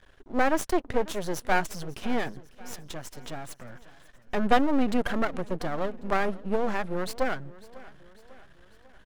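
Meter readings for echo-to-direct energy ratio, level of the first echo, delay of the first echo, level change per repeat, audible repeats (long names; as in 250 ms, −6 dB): −18.5 dB, −20.0 dB, 547 ms, −5.5 dB, 3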